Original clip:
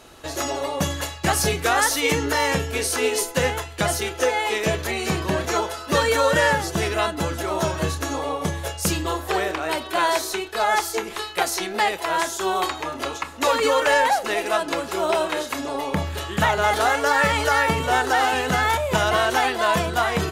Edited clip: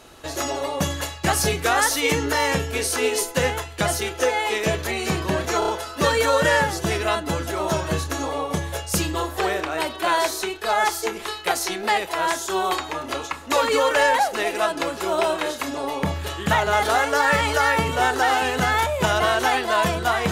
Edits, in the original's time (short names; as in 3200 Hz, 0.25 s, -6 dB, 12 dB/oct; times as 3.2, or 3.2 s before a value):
5.59 stutter 0.03 s, 4 plays